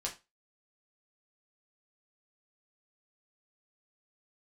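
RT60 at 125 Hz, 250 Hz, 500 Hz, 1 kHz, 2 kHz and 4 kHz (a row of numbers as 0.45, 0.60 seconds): 0.25, 0.25, 0.25, 0.25, 0.25, 0.25 seconds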